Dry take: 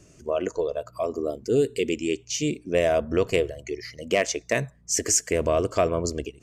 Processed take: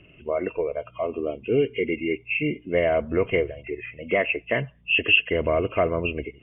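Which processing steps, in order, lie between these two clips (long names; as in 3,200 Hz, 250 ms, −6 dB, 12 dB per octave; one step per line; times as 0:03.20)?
hearing-aid frequency compression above 2,000 Hz 4 to 1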